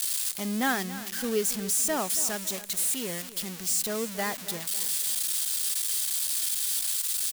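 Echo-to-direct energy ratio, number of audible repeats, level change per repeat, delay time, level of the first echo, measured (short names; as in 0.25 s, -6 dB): -14.0 dB, 3, -7.0 dB, 0.278 s, -15.0 dB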